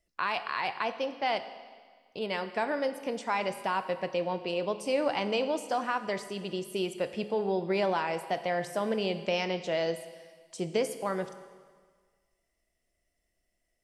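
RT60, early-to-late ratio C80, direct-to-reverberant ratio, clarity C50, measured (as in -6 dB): 1.6 s, 13.0 dB, 10.0 dB, 11.5 dB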